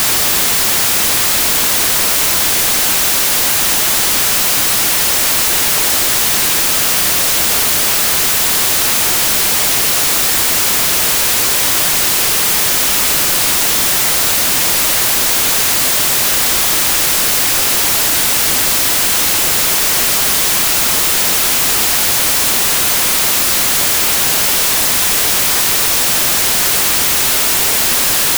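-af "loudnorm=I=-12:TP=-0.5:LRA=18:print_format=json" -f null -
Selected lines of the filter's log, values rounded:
"input_i" : "-10.0",
"input_tp" : "-2.8",
"input_lra" : "0.0",
"input_thresh" : "-20.0",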